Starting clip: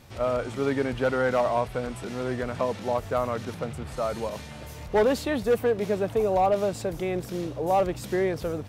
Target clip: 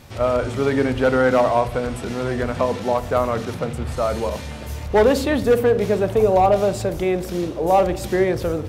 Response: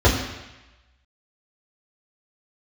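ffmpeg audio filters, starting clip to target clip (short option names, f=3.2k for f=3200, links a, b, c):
-filter_complex "[0:a]asplit=2[a][b];[1:a]atrim=start_sample=2205,adelay=35[c];[b][c]afir=irnorm=-1:irlink=0,volume=-35.5dB[d];[a][d]amix=inputs=2:normalize=0,volume=6.5dB"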